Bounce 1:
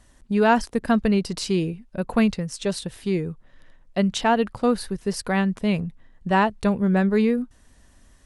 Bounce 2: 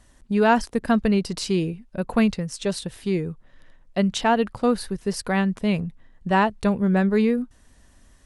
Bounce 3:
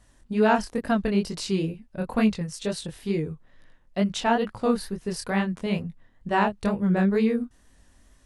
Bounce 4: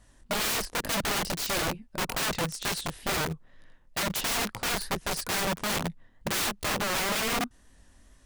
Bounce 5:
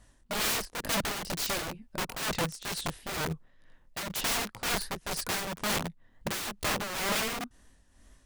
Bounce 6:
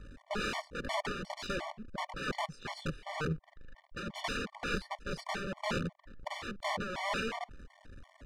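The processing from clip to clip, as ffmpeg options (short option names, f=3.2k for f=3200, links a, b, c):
-af anull
-af "flanger=delay=18.5:depth=7.7:speed=2.2"
-filter_complex "[0:a]asplit=2[a][b];[b]acrusher=bits=4:mix=0:aa=0.000001,volume=-10dB[c];[a][c]amix=inputs=2:normalize=0,aeval=exprs='(mod(15*val(0)+1,2)-1)/15':c=same"
-af "tremolo=f=2.1:d=0.61"
-af "aeval=exprs='val(0)+0.5*0.00668*sgn(val(0))':c=same,adynamicsmooth=sensitivity=1:basefreq=2.9k,afftfilt=real='re*gt(sin(2*PI*2.8*pts/sr)*(1-2*mod(floor(b*sr/1024/590),2)),0)':imag='im*gt(sin(2*PI*2.8*pts/sr)*(1-2*mod(floor(b*sr/1024/590),2)),0)':win_size=1024:overlap=0.75"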